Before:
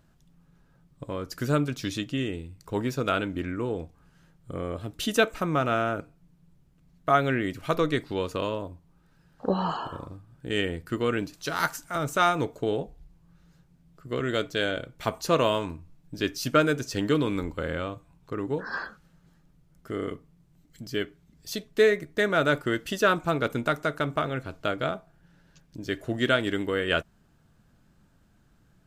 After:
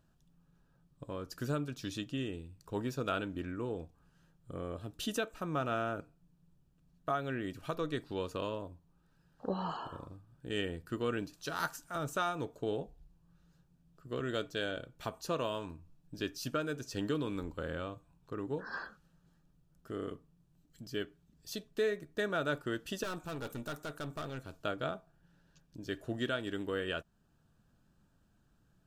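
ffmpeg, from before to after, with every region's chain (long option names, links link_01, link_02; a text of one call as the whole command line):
ffmpeg -i in.wav -filter_complex "[0:a]asettb=1/sr,asplit=3[link_01][link_02][link_03];[link_01]atrim=end=23.034[link_04];[link_02]atrim=start=23.03:end=24.64,asetpts=PTS-STARTPTS,afade=type=in:duration=0.004:curve=qsin,afade=type=out:start_time=1.606:duration=0.004:curve=qsin,highshelf=frequency=5400:gain=9.5,aeval=exprs='(tanh(25.1*val(0)+0.45)-tanh(0.45))/25.1':channel_layout=same[link_05];[link_03]atrim=start=24.636[link_06];[link_04][link_05]acrossfade=duration=0.004:curve1=hsin:curve2=qsin[link_07];[link_07][link_06]acrossfade=duration=0.004:curve1=qsin:curve2=hsin,bandreject=frequency=2100:width=5.5,alimiter=limit=-14.5dB:level=0:latency=1:release=432,volume=-8dB" out.wav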